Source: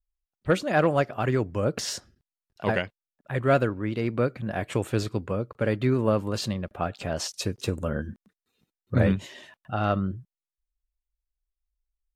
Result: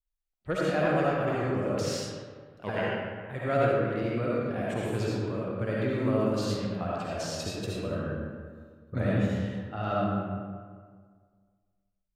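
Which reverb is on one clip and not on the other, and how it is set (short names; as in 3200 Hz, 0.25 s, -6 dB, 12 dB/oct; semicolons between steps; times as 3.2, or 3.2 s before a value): digital reverb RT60 1.8 s, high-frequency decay 0.55×, pre-delay 30 ms, DRR -6 dB; gain -9.5 dB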